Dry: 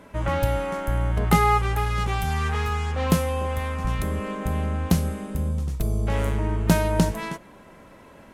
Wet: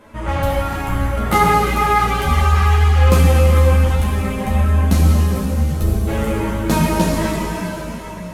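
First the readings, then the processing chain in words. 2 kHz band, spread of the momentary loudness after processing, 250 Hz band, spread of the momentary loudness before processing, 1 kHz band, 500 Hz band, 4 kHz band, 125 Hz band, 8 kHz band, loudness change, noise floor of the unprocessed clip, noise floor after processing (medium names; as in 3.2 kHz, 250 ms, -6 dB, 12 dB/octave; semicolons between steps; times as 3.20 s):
+7.5 dB, 9 LU, +7.0 dB, 7 LU, +8.0 dB, +7.0 dB, +7.5 dB, +9.5 dB, +7.0 dB, +8.5 dB, -49 dBFS, -30 dBFS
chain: plate-style reverb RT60 4.3 s, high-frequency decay 0.9×, DRR -4 dB; three-phase chorus; trim +5 dB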